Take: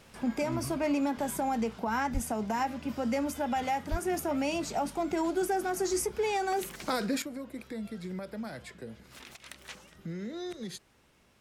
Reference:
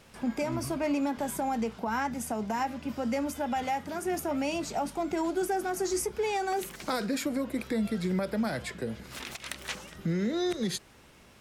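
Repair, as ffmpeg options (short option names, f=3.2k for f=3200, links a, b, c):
-filter_complex "[0:a]asplit=3[a][b][c];[a]afade=t=out:st=2.13:d=0.02[d];[b]highpass=f=140:w=0.5412,highpass=f=140:w=1.3066,afade=t=in:st=2.13:d=0.02,afade=t=out:st=2.25:d=0.02[e];[c]afade=t=in:st=2.25:d=0.02[f];[d][e][f]amix=inputs=3:normalize=0,asplit=3[g][h][i];[g]afade=t=out:st=3.9:d=0.02[j];[h]highpass=f=140:w=0.5412,highpass=f=140:w=1.3066,afade=t=in:st=3.9:d=0.02,afade=t=out:st=4.02:d=0.02[k];[i]afade=t=in:st=4.02:d=0.02[l];[j][k][l]amix=inputs=3:normalize=0,asetnsamples=n=441:p=0,asendcmd='7.22 volume volume 9dB',volume=0dB"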